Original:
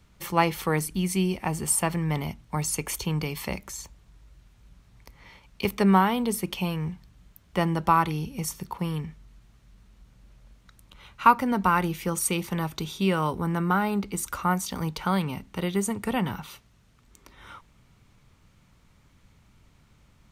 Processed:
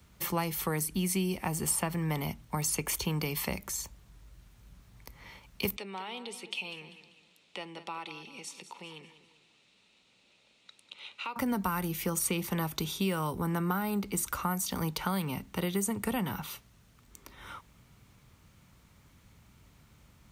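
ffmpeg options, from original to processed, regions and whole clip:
-filter_complex "[0:a]asettb=1/sr,asplit=3[a][b][c];[a]atrim=end=5.764[d];[b]atrim=start=5.76:end=11.36,asetpts=PTS-STARTPTS,afade=t=in:d=0.004:c=qsin,afade=t=out:st=5.596:d=0.004:c=qsin,acompressor=threshold=-42dB:ratio=2:attack=3.2:release=140:knee=1:detection=peak,highpass=420,equalizer=f=670:t=q:w=4:g=-4,equalizer=f=1.1k:t=q:w=4:g=-7,equalizer=f=1.6k:t=q:w=4:g=-8,equalizer=f=2.6k:t=q:w=4:g=9,equalizer=f=3.8k:t=q:w=4:g=8,equalizer=f=6.2k:t=q:w=4:g=-4,lowpass=f=7.9k:w=0.5412,lowpass=f=7.9k:w=1.3066,aecho=1:1:196|392|588|784:0.224|0.0895|0.0358|0.0143,atrim=end_sample=246960[e];[c]atrim=start=11.356[f];[d][e]acrossfade=d=0.004:c1=hsin:c2=qsin[g];[g][f]acrossfade=d=0.004:c1=qsin:c2=hsin,highpass=40,highshelf=f=12k:g=12,acrossover=split=190|5300[h][i][j];[h]acompressor=threshold=-37dB:ratio=4[k];[i]acompressor=threshold=-31dB:ratio=4[l];[j]acompressor=threshold=-32dB:ratio=4[m];[k][l][m]amix=inputs=3:normalize=0"

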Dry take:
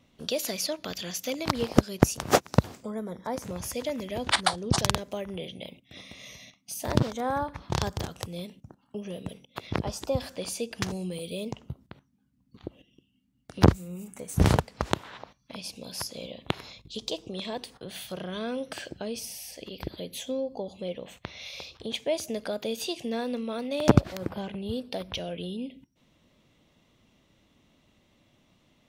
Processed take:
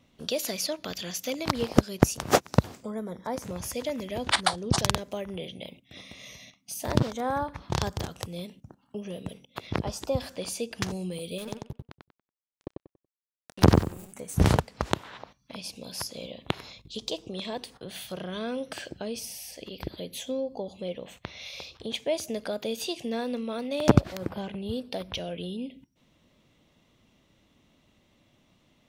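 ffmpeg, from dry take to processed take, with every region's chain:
-filter_complex "[0:a]asettb=1/sr,asplit=3[a][b][c];[a]atrim=end=11.384[d];[b]atrim=start=11.38:end=14.13,asetpts=PTS-STARTPTS,afade=t=in:d=0.004:c=qsin,afade=t=out:st=2.746:d=0.004:c=qsin,highshelf=f=6.5k:g=8.5,aeval=exprs='sgn(val(0))*max(abs(val(0))-0.01,0)':c=same,asplit=2[e][f];[f]adelay=94,lowpass=f=4.7k:p=1,volume=-3dB,asplit=2[g][h];[h]adelay=94,lowpass=f=4.7k:p=1,volume=0.25,asplit=2[i][j];[j]adelay=94,lowpass=f=4.7k:p=1,volume=0.25,asplit=2[k][l];[l]adelay=94,lowpass=f=4.7k:p=1,volume=0.25[m];[e][g][i][k][m]amix=inputs=5:normalize=0,atrim=end_sample=121275[n];[c]atrim=start=14.126[o];[d][n]acrossfade=d=0.004:c1=hsin:c2=qsin[p];[p][o]acrossfade=d=0.004:c1=qsin:c2=hsin"

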